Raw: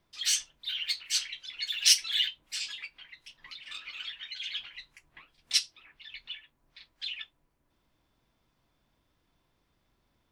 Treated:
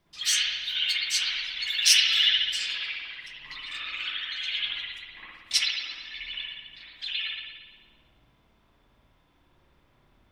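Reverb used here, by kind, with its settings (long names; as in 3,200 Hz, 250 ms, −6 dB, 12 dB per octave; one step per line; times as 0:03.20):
spring reverb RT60 1.3 s, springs 56 ms, chirp 65 ms, DRR −7.5 dB
level +1.5 dB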